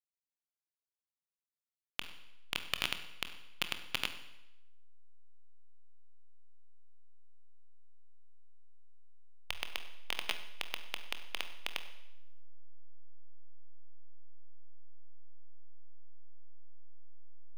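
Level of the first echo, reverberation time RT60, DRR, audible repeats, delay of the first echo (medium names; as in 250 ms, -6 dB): no echo, 0.90 s, 8.0 dB, no echo, no echo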